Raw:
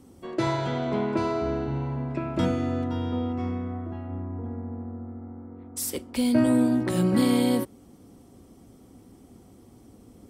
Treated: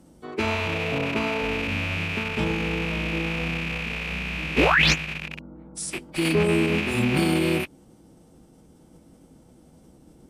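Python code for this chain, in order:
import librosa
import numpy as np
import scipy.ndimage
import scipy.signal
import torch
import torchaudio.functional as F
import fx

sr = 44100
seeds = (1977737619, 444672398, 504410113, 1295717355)

y = fx.rattle_buzz(x, sr, strikes_db=-37.0, level_db=-16.0)
y = fx.spec_paint(y, sr, seeds[0], shape='rise', start_s=4.57, length_s=0.37, low_hz=330.0, high_hz=7200.0, level_db=-14.0)
y = fx.pitch_keep_formants(y, sr, semitones=-7.0)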